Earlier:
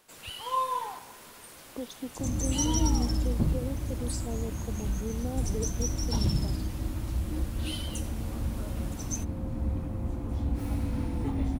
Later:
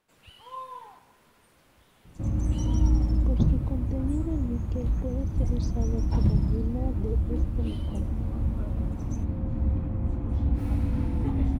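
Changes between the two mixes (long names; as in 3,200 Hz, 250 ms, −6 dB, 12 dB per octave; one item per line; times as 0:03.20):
speech: entry +1.50 s
first sound −10.5 dB
master: add bass and treble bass +5 dB, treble −8 dB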